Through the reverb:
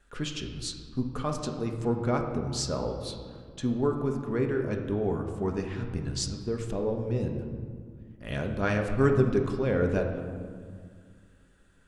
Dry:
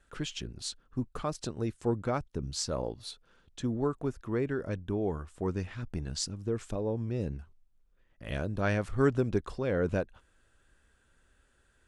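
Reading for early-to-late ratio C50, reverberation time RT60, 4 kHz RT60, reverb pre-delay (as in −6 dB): 6.0 dB, 2.0 s, 1.1 s, 4 ms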